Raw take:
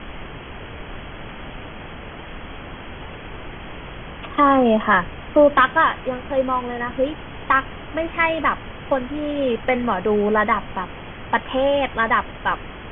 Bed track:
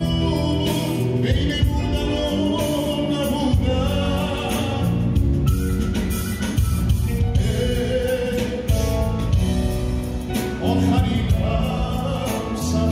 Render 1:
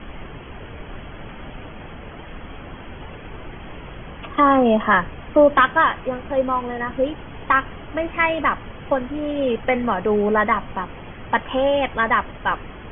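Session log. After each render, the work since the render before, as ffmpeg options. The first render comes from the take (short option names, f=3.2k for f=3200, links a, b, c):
-af "afftdn=nr=6:nf=-36"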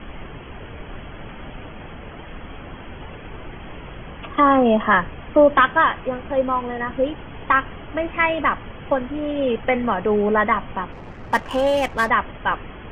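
-filter_complex "[0:a]asettb=1/sr,asplit=3[a][b][c];[a]atrim=end=10.924[d];[b]atrim=start=10.92:end=12.1,asetpts=PTS-STARTPTS,afade=t=in:d=0.004:c=qsin,afade=t=out:st=1.176:d=0.004:c=qsin,adynamicsmooth=sensitivity=7:basefreq=1.2k[e];[c]atrim=start=12.096[f];[d][e]acrossfade=d=0.004:c1=hsin:c2=qsin[g];[g][f]acrossfade=d=0.004:c1=qsin:c2=hsin"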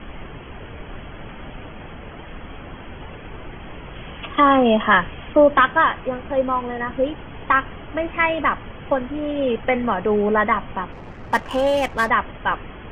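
-filter_complex "[0:a]asettb=1/sr,asplit=3[a][b][c];[a]atrim=end=3.954[d];[b]atrim=start=3.95:end=5.33,asetpts=PTS-STARTPTS,afade=t=in:d=0.004:c=qsin,afade=t=out:st=1.376:d=0.004:c=qsin,lowpass=f=3.5k:t=q:w=2.2[e];[c]atrim=start=5.326[f];[d][e]acrossfade=d=0.004:c1=hsin:c2=qsin[g];[g][f]acrossfade=d=0.004:c1=qsin:c2=hsin"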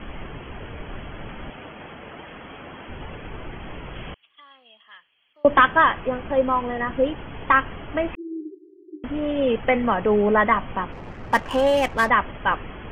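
-filter_complex "[0:a]asettb=1/sr,asplit=3[a][b][c];[a]atrim=end=1.504[d];[b]atrim=start=1.5:end=2.89,asetpts=PTS-STARTPTS,afade=t=in:d=0.004:c=qsin,afade=t=out:st=1.386:d=0.004:c=qsin,highpass=f=240:p=1[e];[c]atrim=start=2.886[f];[d][e]acrossfade=d=0.004:c1=hsin:c2=qsin[g];[g][f]acrossfade=d=0.004:c1=qsin:c2=hsin,asettb=1/sr,asplit=3[h][i][j];[h]atrim=end=4.144[k];[i]atrim=start=4.14:end=5.45,asetpts=PTS-STARTPTS,afade=t=in:d=0.004:c=qsin,afade=t=out:st=1.306:d=0.004:c=qsin,bandpass=f=4.4k:t=q:w=16[l];[j]atrim=start=5.446[m];[k][l]acrossfade=d=0.004:c1=hsin:c2=qsin[n];[n][m]acrossfade=d=0.004:c1=qsin:c2=hsin,asettb=1/sr,asplit=3[o][p][q];[o]atrim=end=8.154[r];[p]atrim=start=8.15:end=9.04,asetpts=PTS-STARTPTS,afade=t=in:d=0.004:c=qsin,afade=t=out:st=0.886:d=0.004:c=qsin,asuperpass=centerf=350:order=20:qfactor=3.1[s];[q]atrim=start=9.036[t];[r][s]acrossfade=d=0.004:c1=hsin:c2=qsin[u];[u][t]acrossfade=d=0.004:c1=qsin:c2=hsin"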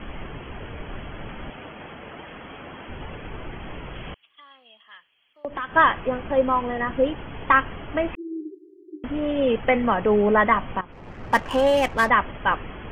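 -filter_complex "[0:a]asettb=1/sr,asplit=3[a][b][c];[a]atrim=end=3.854[d];[b]atrim=start=3.85:end=5.76,asetpts=PTS-STARTPTS,afade=t=in:d=0.004:c=qsin,afade=t=out:st=1.906:d=0.004:c=qsin,acompressor=threshold=-30dB:ratio=4:attack=3.2:release=140:knee=1:detection=peak[e];[c]atrim=start=5.756[f];[d][e]acrossfade=d=0.004:c1=hsin:c2=qsin[g];[g][f]acrossfade=d=0.004:c1=qsin:c2=hsin,asplit=2[h][i];[h]atrim=end=10.81,asetpts=PTS-STARTPTS,afade=t=out:st=10.806:d=0.004:c=hsin:silence=0.16788[j];[i]atrim=start=10.81,asetpts=PTS-STARTPTS,afade=t=in:d=0.43:silence=0.16788[k];[j][k]concat=n=2:v=0:a=1"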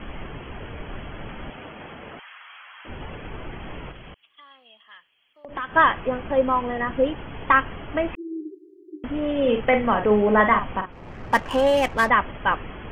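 -filter_complex "[0:a]asettb=1/sr,asplit=3[a][b][c];[a]atrim=end=2.194[d];[b]atrim=start=2.19:end=2.85,asetpts=PTS-STARTPTS,afade=t=in:d=0.004:c=qsin,afade=t=out:st=0.656:d=0.004:c=qsin,highpass=f=1.1k:w=0.5412,highpass=f=1.1k:w=1.3066[e];[c]atrim=start=2.846[f];[d][e]acrossfade=d=0.004:c1=hsin:c2=qsin[g];[g][f]acrossfade=d=0.004:c1=qsin:c2=hsin,asettb=1/sr,asplit=3[h][i][j];[h]atrim=end=3.914[k];[i]atrim=start=3.91:end=5.49,asetpts=PTS-STARTPTS,afade=t=in:d=0.004:c=qsin,afade=t=out:st=1.576:d=0.004:c=qsin,acompressor=threshold=-41dB:ratio=2.5:attack=3.2:release=140:knee=1:detection=peak[l];[j]atrim=start=5.486[m];[k][l]acrossfade=d=0.004:c1=hsin:c2=qsin[n];[n][m]acrossfade=d=0.004:c1=qsin:c2=hsin,asettb=1/sr,asplit=3[o][p][q];[o]atrim=end=9.404[r];[p]atrim=start=9.4:end=11.22,asetpts=PTS-STARTPTS,afade=t=in:d=0.004:c=qsin,afade=t=out:st=1.816:d=0.004:c=qsin,asplit=2[s][t];[t]adelay=47,volume=-7dB[u];[s][u]amix=inputs=2:normalize=0,atrim=end_sample=80262[v];[q]atrim=start=11.216[w];[r][v]acrossfade=d=0.004:c1=hsin:c2=qsin[x];[x][w]acrossfade=d=0.004:c1=qsin:c2=hsin"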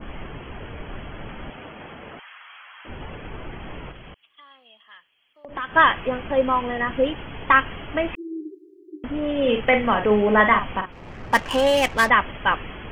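-af "adynamicequalizer=threshold=0.0224:dfrequency=1900:dqfactor=0.7:tfrequency=1900:tqfactor=0.7:attack=5:release=100:ratio=0.375:range=3.5:mode=boostabove:tftype=highshelf"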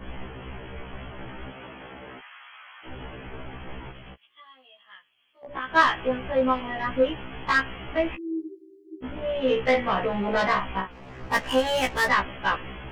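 -af "asoftclip=type=tanh:threshold=-12dB,afftfilt=real='re*1.73*eq(mod(b,3),0)':imag='im*1.73*eq(mod(b,3),0)':win_size=2048:overlap=0.75"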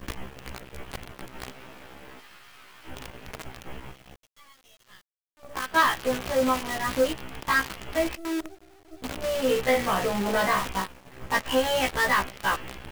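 -af "asoftclip=type=tanh:threshold=-13dB,acrusher=bits=6:dc=4:mix=0:aa=0.000001"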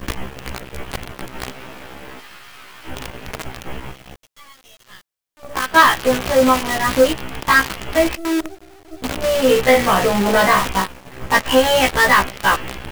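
-af "volume=10dB"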